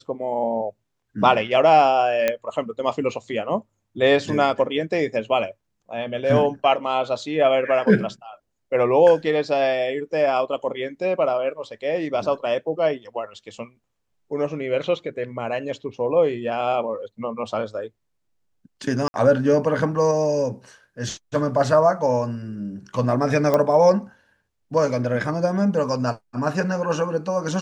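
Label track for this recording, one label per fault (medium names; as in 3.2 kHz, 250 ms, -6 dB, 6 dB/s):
2.280000	2.280000	pop -7 dBFS
19.080000	19.140000	dropout 61 ms
23.540000	23.540000	pop -8 dBFS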